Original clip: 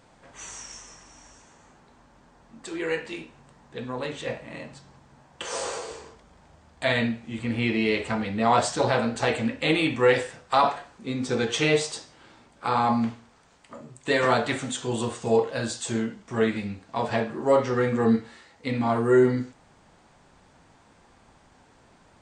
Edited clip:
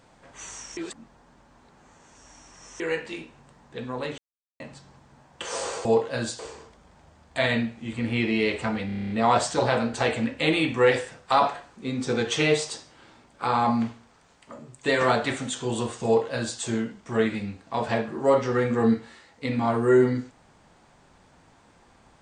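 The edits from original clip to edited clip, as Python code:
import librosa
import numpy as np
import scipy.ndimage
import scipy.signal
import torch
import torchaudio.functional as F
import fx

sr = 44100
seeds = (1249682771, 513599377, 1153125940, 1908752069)

y = fx.edit(x, sr, fx.reverse_span(start_s=0.77, length_s=2.03),
    fx.silence(start_s=4.18, length_s=0.42),
    fx.stutter(start_s=8.32, slice_s=0.03, count=9),
    fx.duplicate(start_s=15.27, length_s=0.54, to_s=5.85), tone=tone)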